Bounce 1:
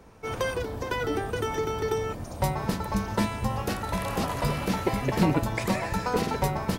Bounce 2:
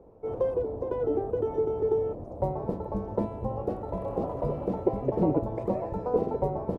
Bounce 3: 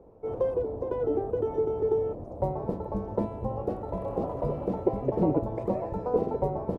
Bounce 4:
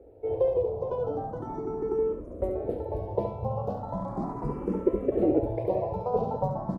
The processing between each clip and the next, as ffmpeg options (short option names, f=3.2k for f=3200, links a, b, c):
-af "firequalizer=gain_entry='entry(220,0);entry(340,7);entry(510,9);entry(1600,-19);entry(5100,-27)':delay=0.05:min_phase=1,volume=-5dB"
-af anull
-filter_complex "[0:a]aecho=1:1:70:0.447,asplit=2[a][b];[b]afreqshift=0.38[c];[a][c]amix=inputs=2:normalize=1,volume=2.5dB"